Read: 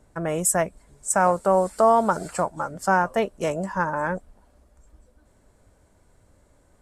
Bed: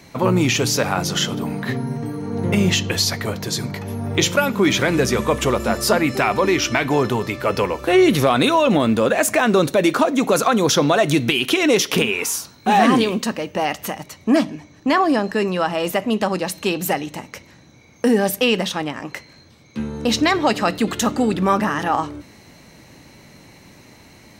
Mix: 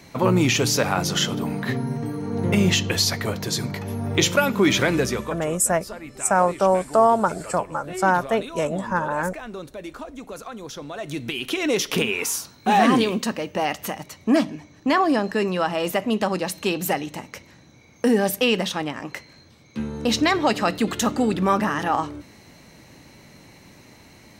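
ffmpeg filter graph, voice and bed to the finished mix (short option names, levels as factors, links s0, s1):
-filter_complex "[0:a]adelay=5150,volume=1.12[s0];[1:a]volume=5.96,afade=t=out:st=4.84:d=0.61:silence=0.125893,afade=t=in:st=10.89:d=1.37:silence=0.141254[s1];[s0][s1]amix=inputs=2:normalize=0"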